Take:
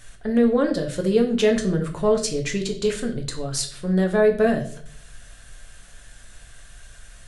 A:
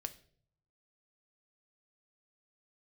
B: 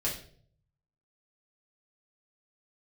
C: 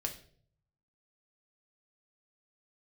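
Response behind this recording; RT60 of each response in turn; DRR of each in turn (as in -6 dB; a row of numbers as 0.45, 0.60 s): C; 0.55, 0.55, 0.55 s; 9.0, -5.5, 3.0 dB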